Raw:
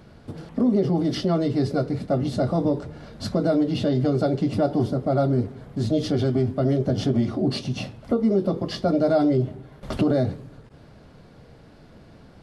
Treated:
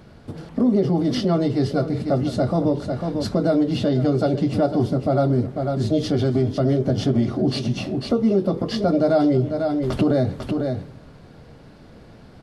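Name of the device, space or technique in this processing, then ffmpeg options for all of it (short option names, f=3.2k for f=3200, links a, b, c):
ducked delay: -filter_complex "[0:a]asplit=3[a][b][c];[b]adelay=498,volume=-5dB[d];[c]apad=whole_len=570079[e];[d][e]sidechaincompress=threshold=-29dB:ratio=8:attack=8.3:release=163[f];[a][f]amix=inputs=2:normalize=0,volume=2dB"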